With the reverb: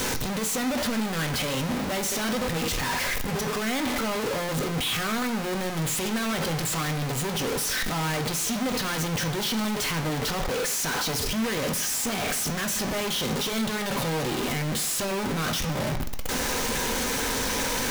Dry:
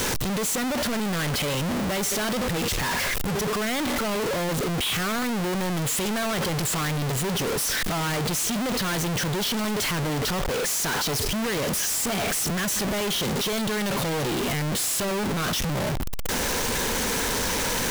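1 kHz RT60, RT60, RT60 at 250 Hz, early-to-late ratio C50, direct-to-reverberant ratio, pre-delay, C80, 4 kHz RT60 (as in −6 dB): 1.0 s, 1.0 s, 0.90 s, 12.0 dB, 4.5 dB, 3 ms, 14.5 dB, 0.95 s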